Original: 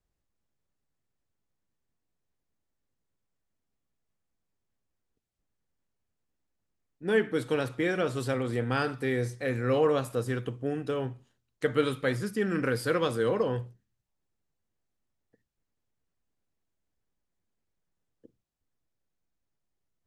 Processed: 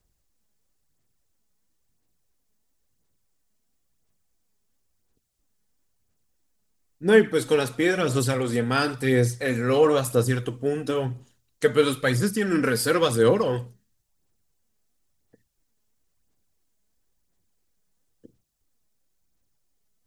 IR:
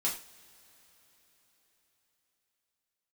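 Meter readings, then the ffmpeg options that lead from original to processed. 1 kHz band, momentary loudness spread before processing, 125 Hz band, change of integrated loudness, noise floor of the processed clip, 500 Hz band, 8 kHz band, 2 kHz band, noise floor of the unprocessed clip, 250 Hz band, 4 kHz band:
+5.5 dB, 7 LU, +6.5 dB, +6.5 dB, −72 dBFS, +6.5 dB, +14.0 dB, +6.0 dB, −82 dBFS, +6.5 dB, +9.0 dB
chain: -af "bass=frequency=250:gain=1,treble=frequency=4000:gain=9,aphaser=in_gain=1:out_gain=1:delay=4.8:decay=0.41:speed=0.98:type=sinusoidal,volume=4.5dB"

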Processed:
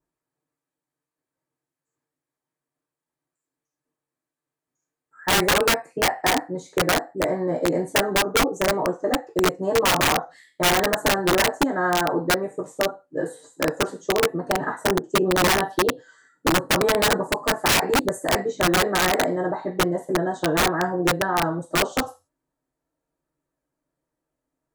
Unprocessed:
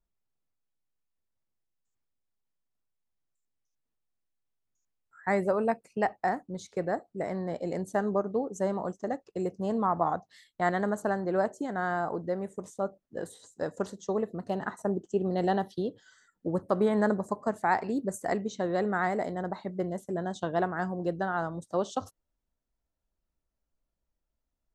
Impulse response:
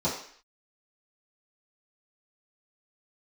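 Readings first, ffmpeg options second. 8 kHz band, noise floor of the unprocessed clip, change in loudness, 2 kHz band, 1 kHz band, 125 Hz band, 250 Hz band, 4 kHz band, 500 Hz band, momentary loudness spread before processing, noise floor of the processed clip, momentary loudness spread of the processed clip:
+22.0 dB, −84 dBFS, +9.0 dB, +13.5 dB, +7.5 dB, +6.5 dB, +6.0 dB, +26.0 dB, +7.0 dB, 8 LU, below −85 dBFS, 7 LU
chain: -filter_complex "[0:a]highpass=frequency=73:poles=1[link_01];[1:a]atrim=start_sample=2205,asetrate=79380,aresample=44100[link_02];[link_01][link_02]afir=irnorm=-1:irlink=0,aeval=exprs='(mod(4.47*val(0)+1,2)-1)/4.47':channel_layout=same"

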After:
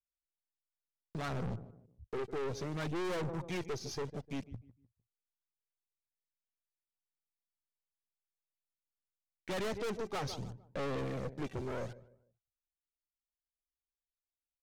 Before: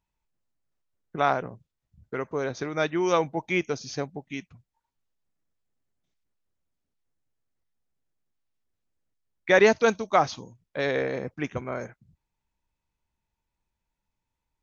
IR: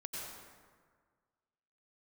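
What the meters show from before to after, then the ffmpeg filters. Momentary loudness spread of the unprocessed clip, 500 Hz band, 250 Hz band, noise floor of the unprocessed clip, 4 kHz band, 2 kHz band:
19 LU, −13.5 dB, −9.5 dB, −85 dBFS, −9.5 dB, −17.0 dB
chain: -filter_complex "[0:a]agate=range=-32dB:threshold=-53dB:ratio=16:detection=peak,acrossover=split=110[link_01][link_02];[link_02]acrusher=bits=7:mix=0:aa=0.000001[link_03];[link_01][link_03]amix=inputs=2:normalize=0,aphaser=in_gain=1:out_gain=1:delay=2.6:decay=0.56:speed=0.65:type=sinusoidal,lowpass=4700,equalizer=frequency=1600:width=0.33:gain=-15,asplit=2[link_04][link_05];[link_05]adelay=151,lowpass=frequency=1500:poles=1,volume=-20dB,asplit=2[link_06][link_07];[link_07]adelay=151,lowpass=frequency=1500:poles=1,volume=0.34,asplit=2[link_08][link_09];[link_09]adelay=151,lowpass=frequency=1500:poles=1,volume=0.34[link_10];[link_04][link_06][link_08][link_10]amix=inputs=4:normalize=0,aeval=exprs='(tanh(112*val(0)+0.45)-tanh(0.45))/112':channel_layout=same,volume=6dB"

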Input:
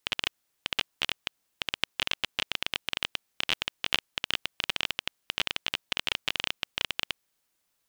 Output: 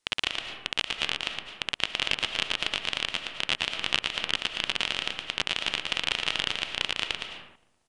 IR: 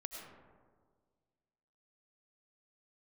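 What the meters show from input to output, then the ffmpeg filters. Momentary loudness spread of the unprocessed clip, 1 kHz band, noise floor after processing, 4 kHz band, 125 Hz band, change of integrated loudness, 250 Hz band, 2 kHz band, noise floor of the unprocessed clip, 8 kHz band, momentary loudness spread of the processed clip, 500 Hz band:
5 LU, +3.5 dB, −67 dBFS, +3.0 dB, +3.0 dB, +3.0 dB, +3.5 dB, +3.0 dB, −77 dBFS, +2.5 dB, 5 LU, +3.5 dB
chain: -filter_complex "[0:a]asplit=2[link_01][link_02];[link_02]adelay=261,lowpass=frequency=900:poles=1,volume=-20dB,asplit=2[link_03][link_04];[link_04]adelay=261,lowpass=frequency=900:poles=1,volume=0.44,asplit=2[link_05][link_06];[link_06]adelay=261,lowpass=frequency=900:poles=1,volume=0.44[link_07];[link_01][link_03][link_05][link_07]amix=inputs=4:normalize=0,aresample=22050,aresample=44100,asplit=2[link_08][link_09];[1:a]atrim=start_sample=2205,afade=type=out:start_time=0.38:duration=0.01,atrim=end_sample=17199,adelay=115[link_10];[link_09][link_10]afir=irnorm=-1:irlink=0,volume=0.5dB[link_11];[link_08][link_11]amix=inputs=2:normalize=0,volume=1dB"

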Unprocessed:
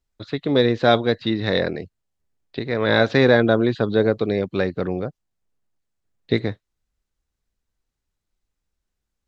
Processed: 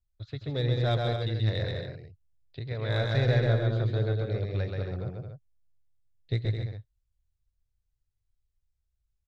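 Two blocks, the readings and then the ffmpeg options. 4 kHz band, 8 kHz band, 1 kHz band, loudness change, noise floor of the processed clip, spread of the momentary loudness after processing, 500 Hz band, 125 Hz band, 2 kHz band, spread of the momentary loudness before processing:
−10.0 dB, can't be measured, −13.0 dB, −9.0 dB, −79 dBFS, 17 LU, −13.0 dB, +1.0 dB, −13.5 dB, 15 LU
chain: -af "firequalizer=gain_entry='entry(120,0);entry(200,-21);entry(600,-14);entry(910,-18);entry(3300,-13)':delay=0.05:min_phase=1,aeval=exprs='0.15*(cos(1*acos(clip(val(0)/0.15,-1,1)))-cos(1*PI/2))+0.00531*(cos(6*acos(clip(val(0)/0.15,-1,1)))-cos(6*PI/2))+0.00266*(cos(8*acos(clip(val(0)/0.15,-1,1)))-cos(8*PI/2))':channel_layout=same,aecho=1:1:131.2|212.8|274.1:0.708|0.447|0.355"

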